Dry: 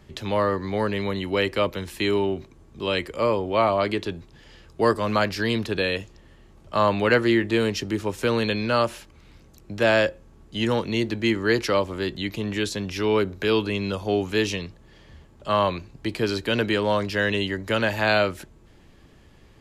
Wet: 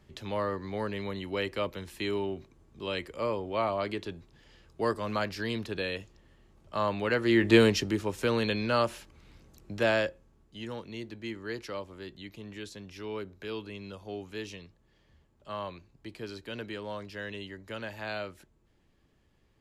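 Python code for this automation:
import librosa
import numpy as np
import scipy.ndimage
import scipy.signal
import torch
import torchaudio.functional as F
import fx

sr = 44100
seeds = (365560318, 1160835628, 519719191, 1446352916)

y = fx.gain(x, sr, db=fx.line((7.18, -9.0), (7.54, 3.0), (8.05, -5.0), (9.76, -5.0), (10.62, -16.0)))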